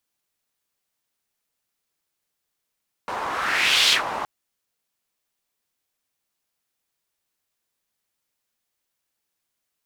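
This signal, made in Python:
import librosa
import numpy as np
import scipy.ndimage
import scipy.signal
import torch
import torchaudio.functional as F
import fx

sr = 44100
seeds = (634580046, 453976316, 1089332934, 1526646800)

y = fx.whoosh(sr, seeds[0], length_s=1.17, peak_s=0.83, rise_s=0.73, fall_s=0.13, ends_hz=940.0, peak_hz=3600.0, q=2.3, swell_db=11.0)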